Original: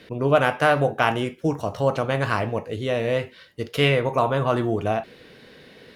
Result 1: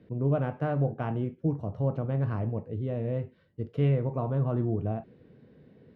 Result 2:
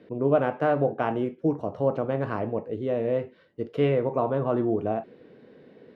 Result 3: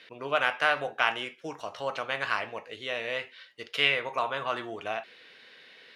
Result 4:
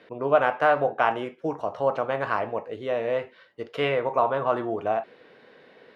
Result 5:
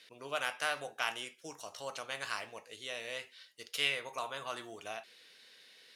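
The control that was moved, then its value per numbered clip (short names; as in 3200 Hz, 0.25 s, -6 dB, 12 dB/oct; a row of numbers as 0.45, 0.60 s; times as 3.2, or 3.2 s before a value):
band-pass, frequency: 120, 320, 2600, 840, 7500 Hz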